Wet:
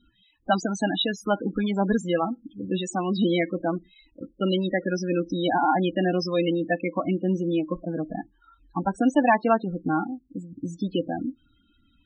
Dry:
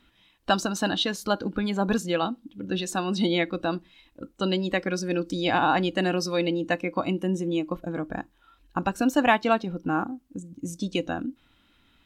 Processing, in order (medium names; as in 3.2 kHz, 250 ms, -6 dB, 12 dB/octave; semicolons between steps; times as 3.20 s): 9.38–10.92 s: treble shelf 4.6 kHz -3.5 dB; loudest bins only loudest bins 16; trim +2 dB